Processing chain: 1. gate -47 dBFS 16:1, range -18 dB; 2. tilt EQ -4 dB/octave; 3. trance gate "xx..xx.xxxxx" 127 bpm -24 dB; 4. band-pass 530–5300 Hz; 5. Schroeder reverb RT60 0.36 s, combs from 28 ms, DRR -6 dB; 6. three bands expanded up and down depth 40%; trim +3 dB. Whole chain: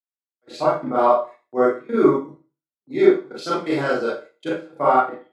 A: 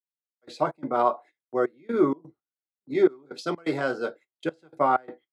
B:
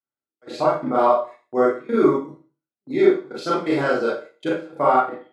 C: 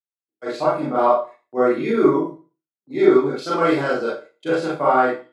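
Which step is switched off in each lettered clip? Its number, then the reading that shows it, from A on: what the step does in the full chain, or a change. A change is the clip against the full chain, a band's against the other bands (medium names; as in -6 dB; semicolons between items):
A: 5, 500 Hz band -1.5 dB; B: 6, crest factor change -1.5 dB; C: 3, 2 kHz band +1.5 dB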